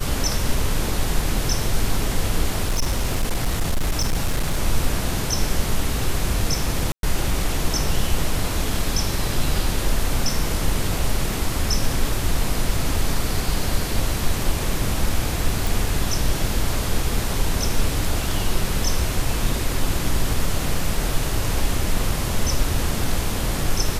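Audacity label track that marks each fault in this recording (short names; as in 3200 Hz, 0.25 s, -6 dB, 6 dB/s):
2.650000	4.600000	clipped -16 dBFS
6.920000	7.030000	gap 0.112 s
15.670000	15.670000	pop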